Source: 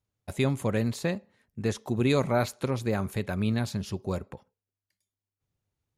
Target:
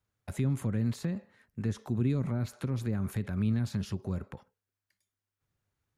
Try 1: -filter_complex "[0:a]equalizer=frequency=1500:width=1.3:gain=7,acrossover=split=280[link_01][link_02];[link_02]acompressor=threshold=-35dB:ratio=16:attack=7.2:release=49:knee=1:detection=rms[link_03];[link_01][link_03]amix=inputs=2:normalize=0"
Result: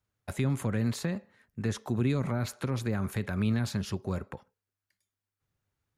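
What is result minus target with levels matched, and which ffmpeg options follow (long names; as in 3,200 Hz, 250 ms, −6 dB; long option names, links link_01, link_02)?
downward compressor: peak gain reduction −8.5 dB
-filter_complex "[0:a]equalizer=frequency=1500:width=1.3:gain=7,acrossover=split=280[link_01][link_02];[link_02]acompressor=threshold=-44dB:ratio=16:attack=7.2:release=49:knee=1:detection=rms[link_03];[link_01][link_03]amix=inputs=2:normalize=0"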